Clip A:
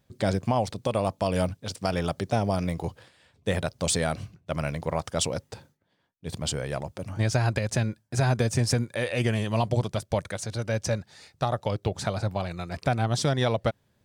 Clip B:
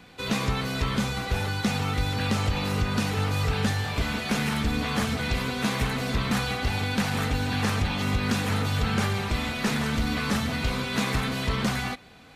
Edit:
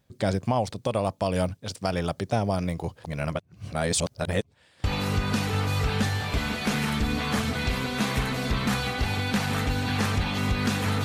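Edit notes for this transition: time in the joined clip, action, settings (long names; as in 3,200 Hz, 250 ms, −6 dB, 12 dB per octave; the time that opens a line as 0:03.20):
clip A
0:03.04–0:04.84: reverse
0:04.84: continue with clip B from 0:02.48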